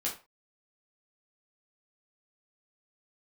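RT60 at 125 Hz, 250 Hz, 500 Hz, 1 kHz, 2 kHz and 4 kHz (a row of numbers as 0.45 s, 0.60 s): 0.30 s, 0.25 s, 0.30 s, 0.30 s, 0.30 s, 0.25 s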